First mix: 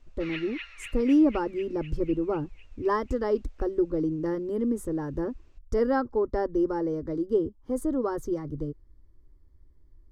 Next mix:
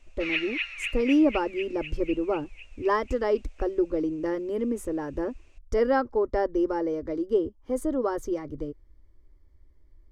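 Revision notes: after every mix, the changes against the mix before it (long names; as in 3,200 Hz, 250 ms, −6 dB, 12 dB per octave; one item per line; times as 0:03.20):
background: remove low-pass filter 5,600 Hz 12 dB per octave
master: add graphic EQ with 15 bands 160 Hz −9 dB, 630 Hz +5 dB, 2,500 Hz +12 dB, 6,300 Hz +3 dB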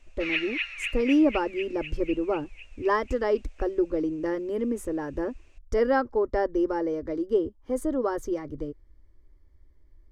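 master: add parametric band 1,700 Hz +2.5 dB 0.3 octaves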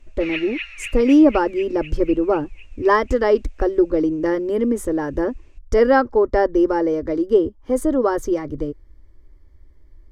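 speech +8.5 dB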